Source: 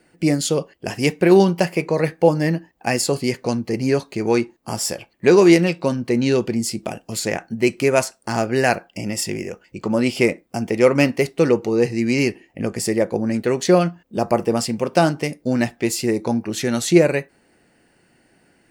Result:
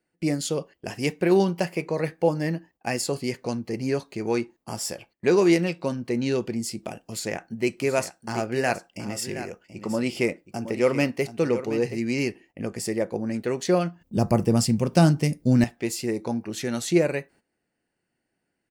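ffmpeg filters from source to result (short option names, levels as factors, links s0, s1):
-filter_complex "[0:a]asplit=3[s0][s1][s2];[s0]afade=t=out:st=7.76:d=0.02[s3];[s1]aecho=1:1:723:0.251,afade=t=in:st=7.76:d=0.02,afade=t=out:st=12.02:d=0.02[s4];[s2]afade=t=in:st=12.02:d=0.02[s5];[s3][s4][s5]amix=inputs=3:normalize=0,asettb=1/sr,asplit=3[s6][s7][s8];[s6]atrim=end=14.014[s9];[s7]atrim=start=14.01:end=15.64,asetpts=PTS-STARTPTS,afade=t=in:d=0.004:c=qsin,afade=t=out:st=1.626:d=0.004:c=qsin,bass=f=250:g=15,treble=f=4000:g=7[s10];[s8]atrim=start=15.636[s11];[s9][s10]acrossfade=d=0.004:c1=hsin:c2=qsin[s12];[s12][s11]acrossfade=d=0.004:c1=qsin:c2=hsin,agate=range=0.2:threshold=0.00562:ratio=16:detection=peak,volume=0.447"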